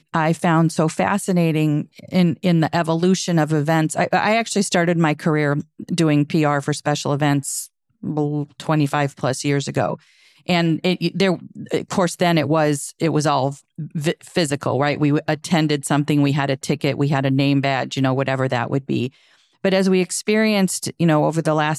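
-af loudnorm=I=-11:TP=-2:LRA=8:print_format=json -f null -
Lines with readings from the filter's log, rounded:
"input_i" : "-19.6",
"input_tp" : "-5.1",
"input_lra" : "2.6",
"input_thresh" : "-29.7",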